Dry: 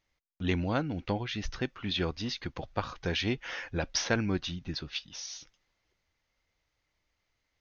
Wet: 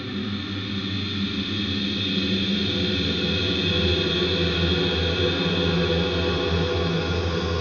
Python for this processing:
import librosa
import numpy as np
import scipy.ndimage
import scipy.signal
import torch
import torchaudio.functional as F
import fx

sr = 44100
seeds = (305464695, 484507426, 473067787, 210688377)

y = fx.paulstretch(x, sr, seeds[0], factor=22.0, window_s=0.5, from_s=1.78)
y = fx.hpss(y, sr, part='harmonic', gain_db=9)
y = fx.rev_schroeder(y, sr, rt60_s=4.0, comb_ms=32, drr_db=2.5)